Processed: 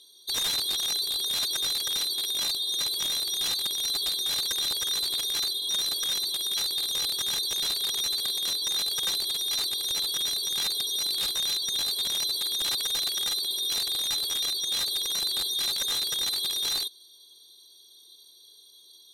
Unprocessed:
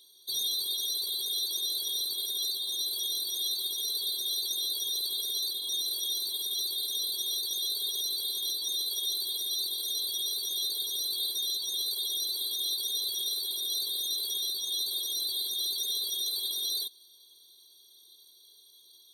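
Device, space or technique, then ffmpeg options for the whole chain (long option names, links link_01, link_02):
overflowing digital effects unit: -af "aeval=exprs='(mod(15.8*val(0)+1,2)-1)/15.8':channel_layout=same,lowpass=11000,volume=4.5dB"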